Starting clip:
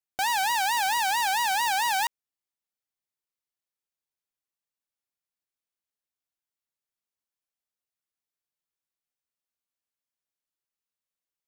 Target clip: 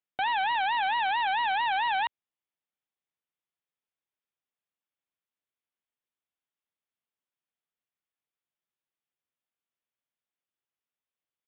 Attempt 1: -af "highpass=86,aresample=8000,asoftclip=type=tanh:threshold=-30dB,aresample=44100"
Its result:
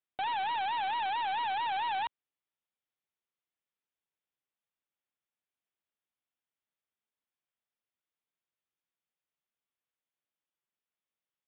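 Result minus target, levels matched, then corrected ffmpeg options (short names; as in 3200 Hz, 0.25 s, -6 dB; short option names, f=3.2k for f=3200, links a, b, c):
soft clip: distortion +14 dB
-af "highpass=86,aresample=8000,asoftclip=type=tanh:threshold=-19dB,aresample=44100"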